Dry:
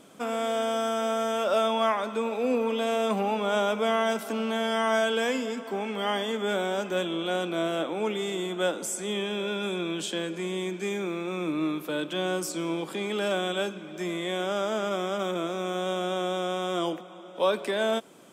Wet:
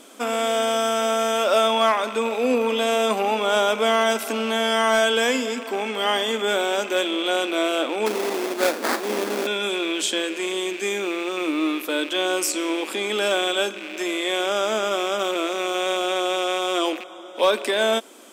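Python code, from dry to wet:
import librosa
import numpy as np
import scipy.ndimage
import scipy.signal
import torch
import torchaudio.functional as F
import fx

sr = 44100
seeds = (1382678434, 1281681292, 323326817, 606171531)

y = fx.rattle_buzz(x, sr, strikes_db=-48.0, level_db=-33.0)
y = fx.high_shelf(y, sr, hz=2100.0, db=6.0)
y = fx.sample_hold(y, sr, seeds[0], rate_hz=3000.0, jitter_pct=20, at=(8.06, 9.47))
y = fx.brickwall_highpass(y, sr, low_hz=210.0)
y = np.clip(10.0 ** (15.0 / 20.0) * y, -1.0, 1.0) / 10.0 ** (15.0 / 20.0)
y = y * librosa.db_to_amplitude(5.0)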